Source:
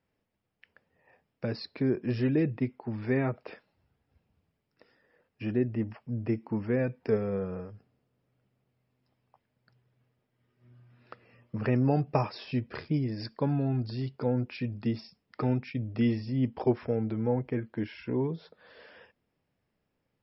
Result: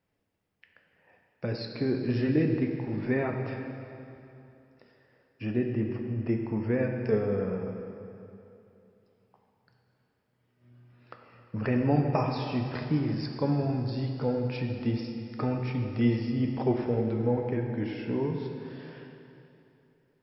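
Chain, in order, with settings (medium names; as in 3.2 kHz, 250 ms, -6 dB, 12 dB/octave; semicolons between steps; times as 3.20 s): plate-style reverb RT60 2.9 s, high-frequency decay 0.85×, DRR 2.5 dB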